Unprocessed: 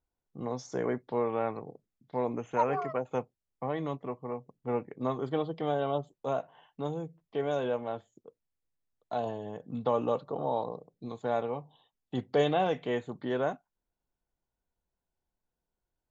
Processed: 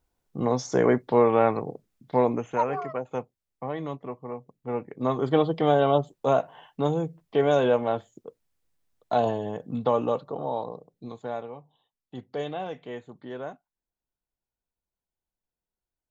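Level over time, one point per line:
0:02.15 +10.5 dB
0:02.69 +1 dB
0:04.73 +1 dB
0:05.36 +9.5 dB
0:09.25 +9.5 dB
0:10.45 +1 dB
0:11.09 +1 dB
0:11.53 −6 dB

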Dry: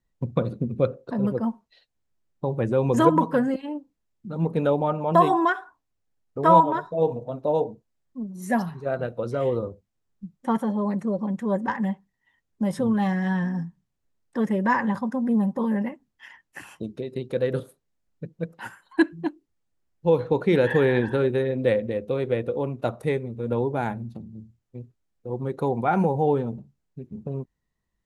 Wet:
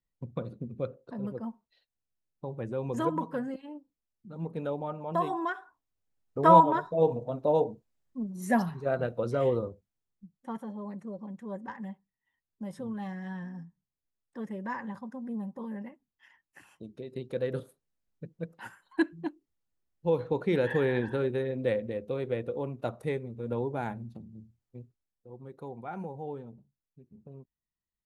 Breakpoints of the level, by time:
0:05.35 −11.5 dB
0:06.40 −2 dB
0:09.48 −2 dB
0:10.35 −14 dB
0:16.71 −14 dB
0:17.18 −7 dB
0:24.78 −7 dB
0:25.31 −17 dB

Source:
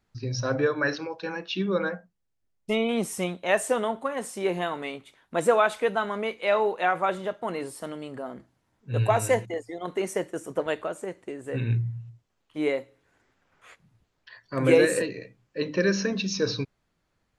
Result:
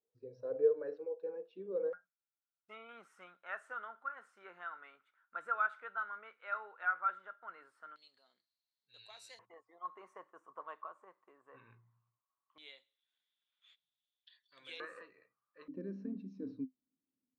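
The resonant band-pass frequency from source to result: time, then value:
resonant band-pass, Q 13
470 Hz
from 0:01.93 1,400 Hz
from 0:07.96 4,200 Hz
from 0:09.39 1,100 Hz
from 0:12.58 3,500 Hz
from 0:14.80 1,200 Hz
from 0:15.68 260 Hz

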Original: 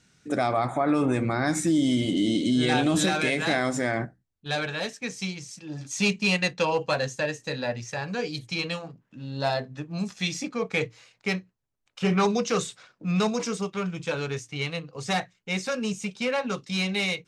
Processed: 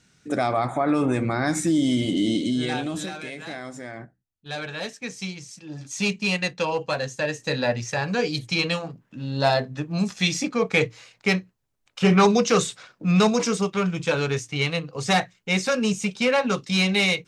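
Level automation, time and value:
0:02.33 +1.5 dB
0:03.21 −10.5 dB
0:03.96 −10.5 dB
0:04.86 −0.5 dB
0:07.08 −0.5 dB
0:07.52 +6 dB

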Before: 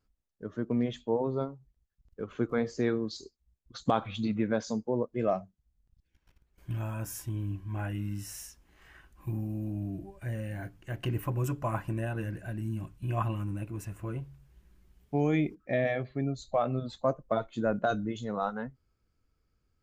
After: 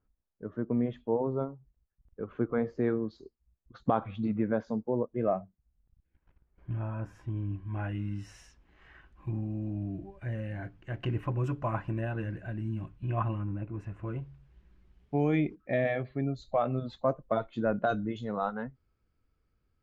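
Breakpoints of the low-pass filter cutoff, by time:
0:07.13 1,600 Hz
0:07.91 3,200 Hz
0:12.85 3,200 Hz
0:13.65 1,600 Hz
0:14.29 3,600 Hz

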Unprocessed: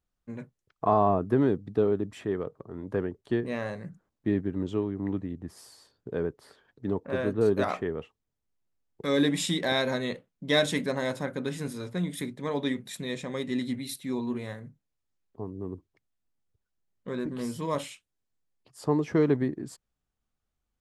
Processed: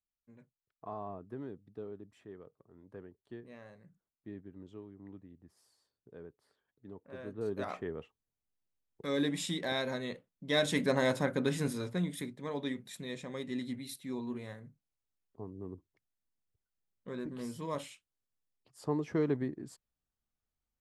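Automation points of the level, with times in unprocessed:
0:06.94 −19.5 dB
0:07.89 −7.5 dB
0:10.48 −7.5 dB
0:10.93 +1 dB
0:11.68 +1 dB
0:12.36 −7.5 dB

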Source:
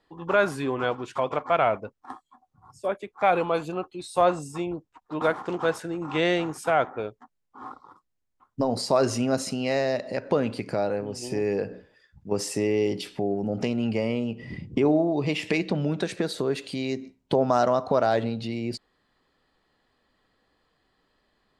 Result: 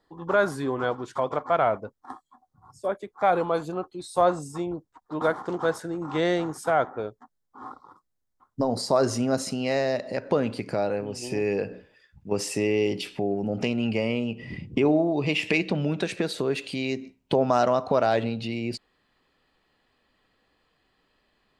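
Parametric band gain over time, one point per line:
parametric band 2,600 Hz 0.46 octaves
0:08.79 −11.5 dB
0:09.62 −0.5 dB
0:10.64 −0.5 dB
0:11.09 +6.5 dB

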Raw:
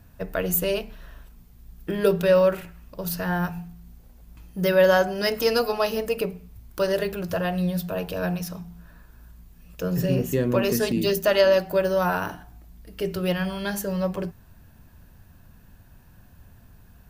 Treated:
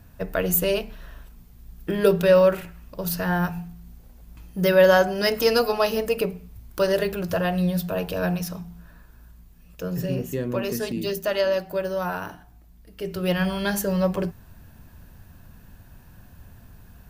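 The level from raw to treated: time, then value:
0:08.45 +2 dB
0:10.33 −4.5 dB
0:13.00 −4.5 dB
0:13.42 +3.5 dB

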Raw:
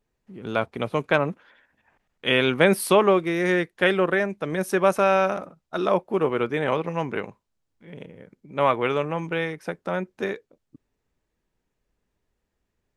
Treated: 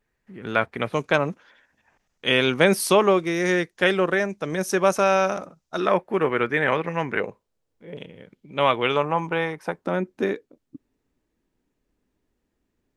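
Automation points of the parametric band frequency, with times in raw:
parametric band +10 dB 0.81 octaves
1,800 Hz
from 0:00.93 6,000 Hz
from 0:05.80 1,800 Hz
from 0:07.20 480 Hz
from 0:07.97 3,200 Hz
from 0:08.96 920 Hz
from 0:09.84 280 Hz

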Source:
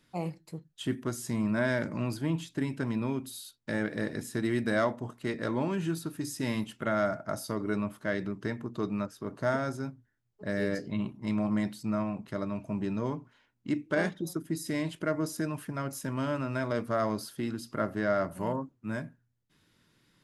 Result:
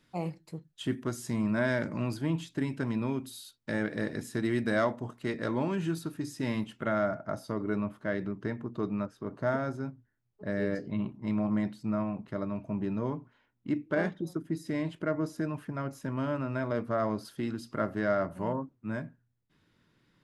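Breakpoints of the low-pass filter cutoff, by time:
low-pass filter 6 dB per octave
7,300 Hz
from 0:06.14 3,300 Hz
from 0:06.98 1,900 Hz
from 0:17.25 4,900 Hz
from 0:18.15 2,500 Hz

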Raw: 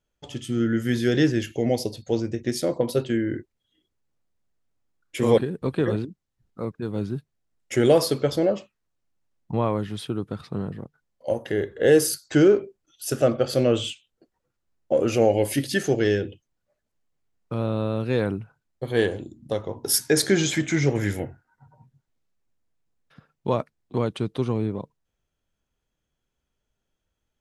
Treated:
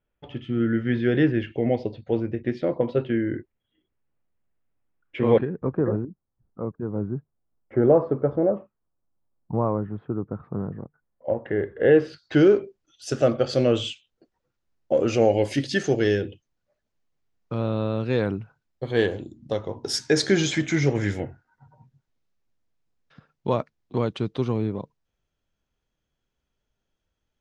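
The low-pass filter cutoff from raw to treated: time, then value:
low-pass filter 24 dB per octave
0:05.34 2,800 Hz
0:05.78 1,300 Hz
0:10.39 1,300 Hz
0:12.03 2,700 Hz
0:12.59 6,600 Hz

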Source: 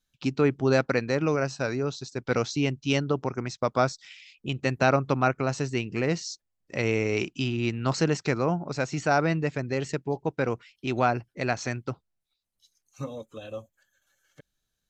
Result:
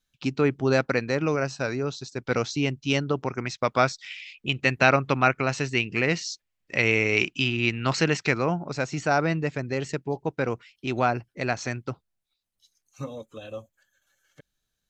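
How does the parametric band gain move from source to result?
parametric band 2,400 Hz 1.5 octaves
0:02.99 +2.5 dB
0:03.58 +10 dB
0:08.20 +10 dB
0:08.86 +1.5 dB

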